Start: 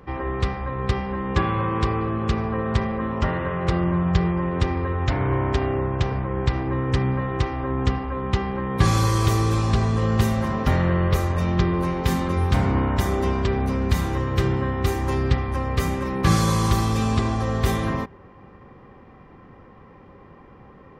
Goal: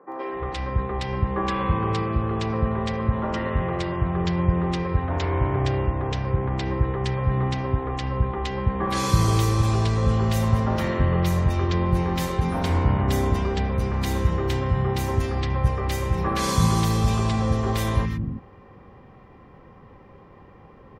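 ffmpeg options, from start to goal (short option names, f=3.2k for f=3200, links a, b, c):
-filter_complex "[0:a]acrossover=split=270|1500[a][b][c];[c]adelay=120[d];[a]adelay=330[e];[e][b][d]amix=inputs=3:normalize=0"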